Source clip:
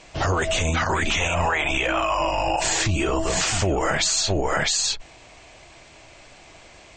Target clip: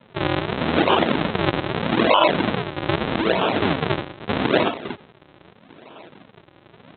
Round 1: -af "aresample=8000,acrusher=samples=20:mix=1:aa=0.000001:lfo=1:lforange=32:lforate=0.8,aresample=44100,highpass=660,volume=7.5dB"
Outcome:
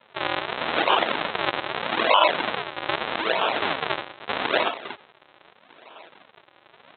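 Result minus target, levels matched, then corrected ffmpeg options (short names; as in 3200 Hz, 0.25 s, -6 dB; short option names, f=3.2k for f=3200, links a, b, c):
250 Hz band -10.0 dB
-af "aresample=8000,acrusher=samples=20:mix=1:aa=0.000001:lfo=1:lforange=32:lforate=0.8,aresample=44100,highpass=230,volume=7.5dB"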